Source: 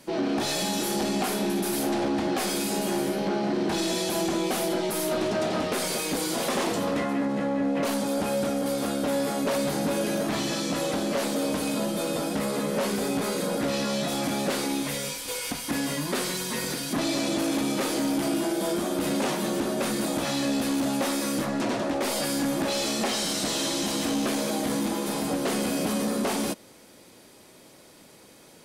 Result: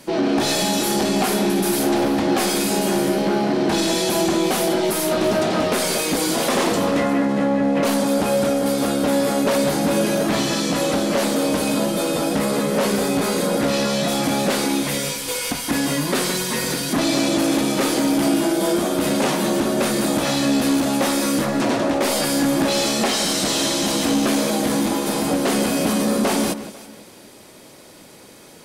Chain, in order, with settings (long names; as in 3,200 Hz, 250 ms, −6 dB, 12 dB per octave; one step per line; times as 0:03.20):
delay that swaps between a low-pass and a high-pass 165 ms, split 2,300 Hz, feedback 51%, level −11 dB
level +7 dB